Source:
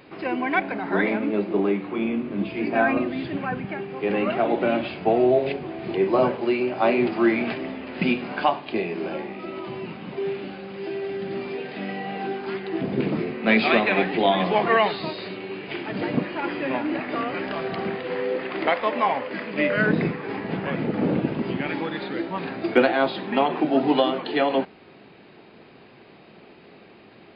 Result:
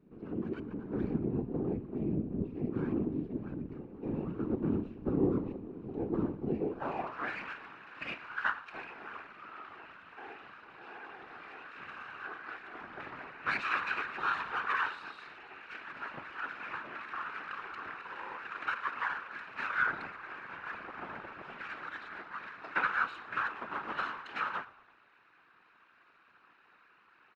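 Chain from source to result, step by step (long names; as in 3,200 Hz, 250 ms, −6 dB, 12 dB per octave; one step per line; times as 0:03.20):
lower of the sound and its delayed copy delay 0.74 ms
band-pass filter sweep 250 Hz → 1,500 Hz, 0:06.52–0:07.21
random phases in short frames
on a send: echo with shifted repeats 115 ms, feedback 44%, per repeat −78 Hz, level −19.5 dB
on the sum: level −4 dB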